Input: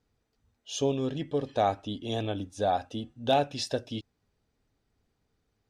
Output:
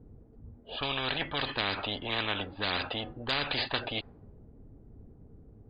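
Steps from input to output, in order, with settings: brick-wall FIR low-pass 4.9 kHz; level-controlled noise filter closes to 390 Hz, open at -22.5 dBFS; spectrum-flattening compressor 10:1

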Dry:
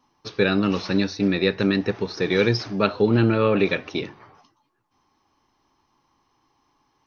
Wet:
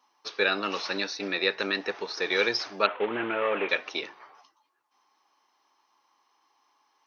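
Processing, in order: 2.86–3.69 s: CVSD coder 16 kbps; high-pass 630 Hz 12 dB/octave

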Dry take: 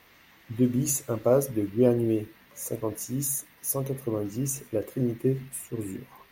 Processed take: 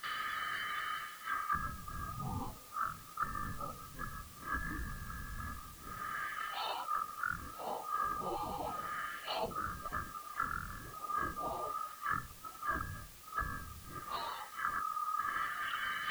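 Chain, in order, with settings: split-band scrambler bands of 4 kHz; gate with hold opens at -47 dBFS; low-pass that closes with the level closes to 430 Hz, closed at -23.5 dBFS; treble shelf 7.9 kHz +11 dB; formant shift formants -5 st; peaking EQ 3.2 kHz +10.5 dB 0.52 oct; wide varispeed 0.392×; reverse; compression 8:1, threshold -54 dBFS, peak gain reduction 32 dB; reverse; added noise white -74 dBFS; trim +18 dB

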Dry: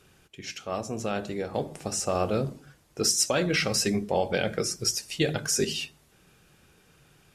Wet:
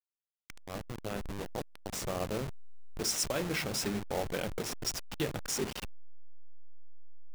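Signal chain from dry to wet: send-on-delta sampling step -24.5 dBFS; trim -7.5 dB

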